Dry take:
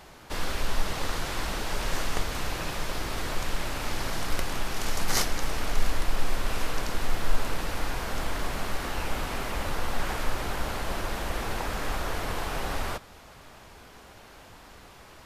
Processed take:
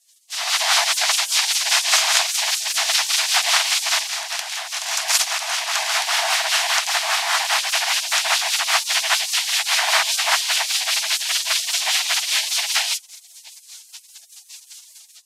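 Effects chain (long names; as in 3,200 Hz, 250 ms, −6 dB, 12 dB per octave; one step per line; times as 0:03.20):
gate on every frequency bin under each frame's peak −25 dB weak
high-shelf EQ 2,900 Hz +12 dB
automatic gain control gain up to 13.5 dB
rotating-speaker cabinet horn 5 Hz
frequency shifter +390 Hz
linear-phase brick-wall high-pass 620 Hz
high-frequency loss of the air 54 metres
level +5.5 dB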